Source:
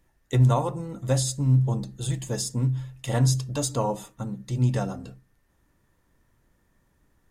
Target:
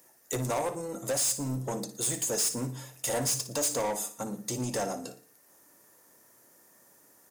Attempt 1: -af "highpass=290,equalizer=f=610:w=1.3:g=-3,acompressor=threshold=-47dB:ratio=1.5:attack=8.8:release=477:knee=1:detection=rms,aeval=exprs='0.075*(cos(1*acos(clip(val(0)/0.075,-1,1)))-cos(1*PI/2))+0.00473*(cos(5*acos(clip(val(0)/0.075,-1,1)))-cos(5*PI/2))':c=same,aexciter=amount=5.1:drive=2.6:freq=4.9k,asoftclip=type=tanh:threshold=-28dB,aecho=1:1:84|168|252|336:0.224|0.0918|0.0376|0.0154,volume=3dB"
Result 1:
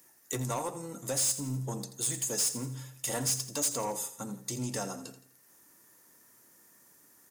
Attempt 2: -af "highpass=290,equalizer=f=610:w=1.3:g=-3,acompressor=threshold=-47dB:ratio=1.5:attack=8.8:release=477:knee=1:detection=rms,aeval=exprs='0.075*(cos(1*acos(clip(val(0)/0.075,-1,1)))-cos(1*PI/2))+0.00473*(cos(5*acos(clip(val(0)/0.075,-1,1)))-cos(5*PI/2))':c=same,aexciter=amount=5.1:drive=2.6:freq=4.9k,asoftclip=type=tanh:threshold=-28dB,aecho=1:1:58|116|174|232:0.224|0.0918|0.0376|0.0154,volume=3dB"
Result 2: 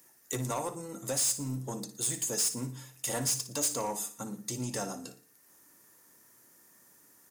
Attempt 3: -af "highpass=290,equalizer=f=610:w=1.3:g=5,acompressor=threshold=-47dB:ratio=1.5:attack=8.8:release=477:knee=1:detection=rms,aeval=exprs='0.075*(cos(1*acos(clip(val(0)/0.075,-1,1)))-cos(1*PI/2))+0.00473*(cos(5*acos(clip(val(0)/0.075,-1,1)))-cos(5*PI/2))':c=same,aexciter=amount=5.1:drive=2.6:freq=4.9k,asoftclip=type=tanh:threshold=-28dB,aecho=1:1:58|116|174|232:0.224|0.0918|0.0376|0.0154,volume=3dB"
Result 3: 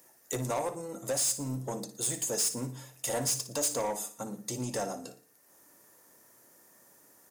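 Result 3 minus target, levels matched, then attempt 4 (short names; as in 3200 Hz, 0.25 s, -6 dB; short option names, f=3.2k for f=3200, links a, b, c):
compressor: peak gain reduction +4 dB
-af "highpass=290,equalizer=f=610:w=1.3:g=5,acompressor=threshold=-35.5dB:ratio=1.5:attack=8.8:release=477:knee=1:detection=rms,aeval=exprs='0.075*(cos(1*acos(clip(val(0)/0.075,-1,1)))-cos(1*PI/2))+0.00473*(cos(5*acos(clip(val(0)/0.075,-1,1)))-cos(5*PI/2))':c=same,aexciter=amount=5.1:drive=2.6:freq=4.9k,asoftclip=type=tanh:threshold=-28dB,aecho=1:1:58|116|174|232:0.224|0.0918|0.0376|0.0154,volume=3dB"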